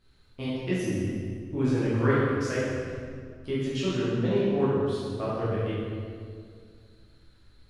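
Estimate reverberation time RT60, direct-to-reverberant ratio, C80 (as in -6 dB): 2.1 s, -10.5 dB, -1.0 dB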